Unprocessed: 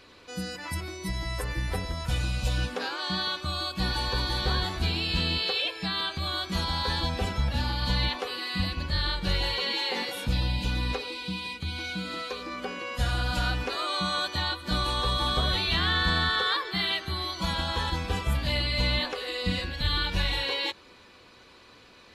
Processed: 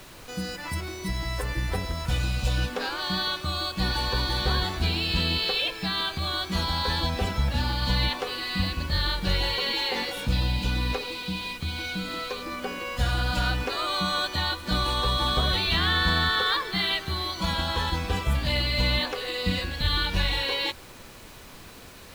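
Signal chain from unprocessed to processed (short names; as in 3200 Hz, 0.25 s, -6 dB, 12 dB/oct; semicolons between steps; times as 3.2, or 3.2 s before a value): median filter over 3 samples; added noise pink -49 dBFS; gain +2 dB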